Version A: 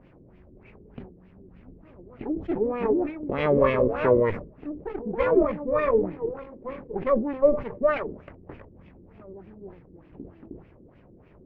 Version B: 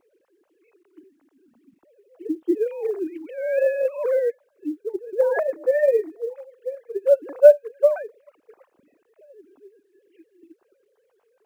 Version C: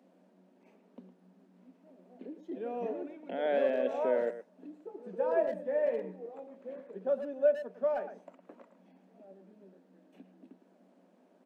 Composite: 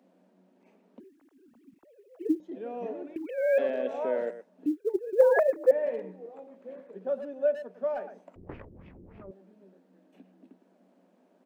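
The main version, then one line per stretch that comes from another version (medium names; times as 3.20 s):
C
1.00–2.40 s: from B
3.16–3.58 s: from B
4.66–5.71 s: from B
8.36–9.31 s: from A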